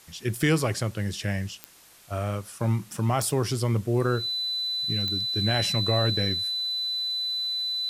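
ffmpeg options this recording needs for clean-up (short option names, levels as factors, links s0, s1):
-af "adeclick=t=4,bandreject=f=4000:w=30,agate=range=0.0891:threshold=0.0141"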